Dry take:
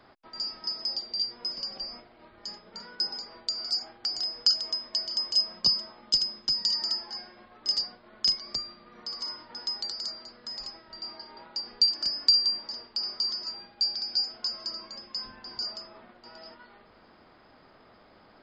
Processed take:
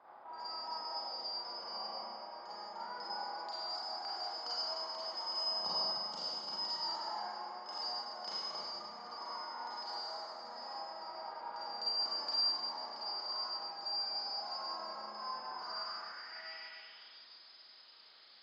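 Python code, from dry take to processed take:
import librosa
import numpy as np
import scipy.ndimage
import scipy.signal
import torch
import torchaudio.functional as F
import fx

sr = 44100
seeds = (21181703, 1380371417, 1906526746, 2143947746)

y = fx.rev_schroeder(x, sr, rt60_s=2.2, comb_ms=33, drr_db=-9.0)
y = fx.filter_sweep_bandpass(y, sr, from_hz=880.0, to_hz=4300.0, start_s=15.49, end_s=17.38, q=3.2)
y = y * librosa.db_to_amplitude(2.5)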